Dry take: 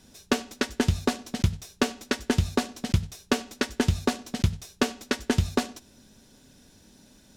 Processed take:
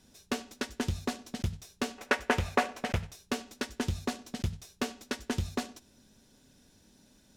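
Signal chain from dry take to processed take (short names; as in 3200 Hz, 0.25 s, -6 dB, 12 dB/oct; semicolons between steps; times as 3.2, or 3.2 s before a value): hard clip -17.5 dBFS, distortion -13 dB; 1.98–3.12 band shelf 1100 Hz +12 dB 2.9 oct; gain -6.5 dB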